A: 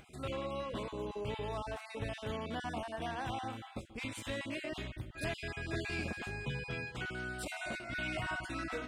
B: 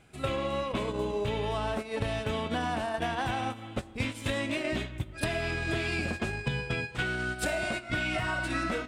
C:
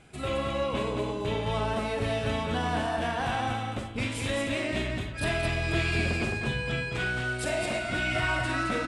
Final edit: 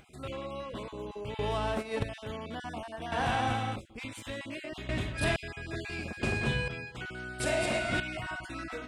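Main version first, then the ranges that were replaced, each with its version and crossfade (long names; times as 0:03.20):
A
0:01.39–0:02.03: punch in from B
0:03.12–0:03.76: punch in from C
0:04.89–0:05.36: punch in from C
0:06.23–0:06.68: punch in from C
0:07.40–0:08.00: punch in from C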